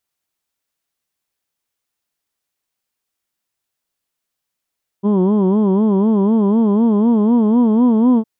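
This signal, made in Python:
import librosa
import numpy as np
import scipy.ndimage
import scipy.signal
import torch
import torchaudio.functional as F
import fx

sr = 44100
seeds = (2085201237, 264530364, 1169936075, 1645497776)

y = fx.formant_vowel(sr, seeds[0], length_s=3.21, hz=194.0, glide_st=3.5, vibrato_hz=4.0, vibrato_st=1.35, f1_hz=310.0, f2_hz=990.0, f3_hz=3200.0)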